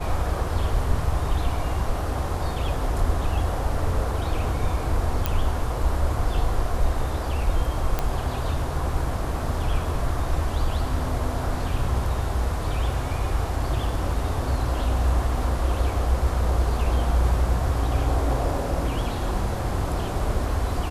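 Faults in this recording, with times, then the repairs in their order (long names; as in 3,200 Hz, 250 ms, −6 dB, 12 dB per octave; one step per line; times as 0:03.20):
0:05.26: click −8 dBFS
0:07.99: click −10 dBFS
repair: click removal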